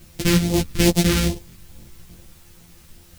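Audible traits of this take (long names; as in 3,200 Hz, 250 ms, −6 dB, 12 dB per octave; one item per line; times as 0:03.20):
a buzz of ramps at a fixed pitch in blocks of 256 samples
phaser sweep stages 2, 2.4 Hz, lowest notch 700–1,400 Hz
a quantiser's noise floor 10 bits, dither triangular
a shimmering, thickened sound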